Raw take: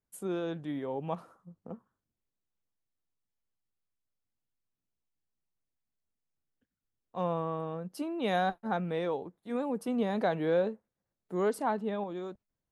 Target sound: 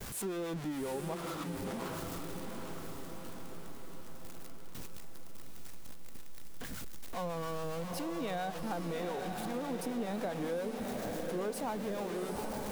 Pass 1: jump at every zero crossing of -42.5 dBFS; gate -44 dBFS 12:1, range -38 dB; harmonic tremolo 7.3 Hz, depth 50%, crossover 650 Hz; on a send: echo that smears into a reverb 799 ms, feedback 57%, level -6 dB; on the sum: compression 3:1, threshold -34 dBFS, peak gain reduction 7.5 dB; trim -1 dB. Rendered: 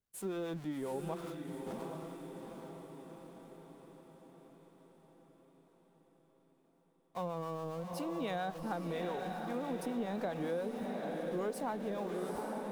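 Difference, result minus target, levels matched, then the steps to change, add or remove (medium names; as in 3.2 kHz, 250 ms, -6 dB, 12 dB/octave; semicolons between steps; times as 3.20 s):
jump at every zero crossing: distortion -9 dB
change: jump at every zero crossing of -31.5 dBFS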